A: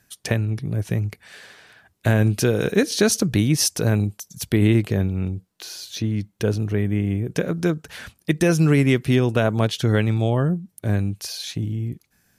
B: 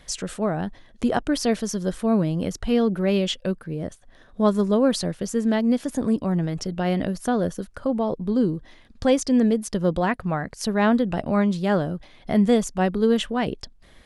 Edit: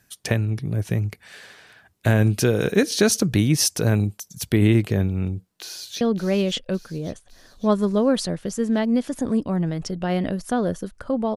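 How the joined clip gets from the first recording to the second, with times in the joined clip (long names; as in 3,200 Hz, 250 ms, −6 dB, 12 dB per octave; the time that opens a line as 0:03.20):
A
0:05.55–0:06.01: delay throw 560 ms, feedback 55%, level −10 dB
0:06.01: continue with B from 0:02.77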